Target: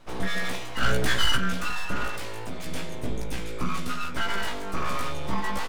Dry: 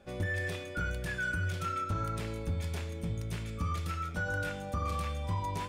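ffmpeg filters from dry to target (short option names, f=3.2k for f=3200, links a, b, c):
-filter_complex "[0:a]asplit=3[a][b][c];[a]afade=t=out:st=0.81:d=0.02[d];[b]acontrast=63,afade=t=in:st=0.81:d=0.02,afade=t=out:st=1.35:d=0.02[e];[c]afade=t=in:st=1.35:d=0.02[f];[d][e][f]amix=inputs=3:normalize=0,asettb=1/sr,asplit=3[g][h][i];[g]atrim=end=2.084[j];[h]atrim=start=2.08:end=2.67,asetpts=PTS-STARTPTS,afade=t=in:d=0.004:c=qsin,afade=t=out:st=0.586:d=0.004:c=qsin,lowshelf=f=200:g=-10[k];[i]atrim=start=2.666[l];[j][k]acrossfade=d=0.004:c1=hsin:c2=qsin[m];[m][l]acrossfade=d=0.004:c1=qsin:c2=hsin,asettb=1/sr,asplit=3[n][o][p];[n]atrim=end=3.384[q];[o]atrim=start=3.38:end=4.12,asetpts=PTS-STARTPTS,afade=t=in:d=0.004:c=qsin,afade=t=out:st=0.736:d=0.004:c=qsin,highpass=f=43:w=0.5412,highpass=f=43:w=1.3066[r];[p]atrim=start=4.116[s];[q][r]acrossfade=d=0.004:c1=hsin:c2=qsin[t];[t][s]acrossfade=d=0.004:c1=qsin:c2=hsin,aeval=exprs='abs(val(0))':c=same,asplit=2[u][v];[v]adelay=16,volume=-3.5dB[w];[u][w]amix=inputs=2:normalize=0,volume=6.5dB"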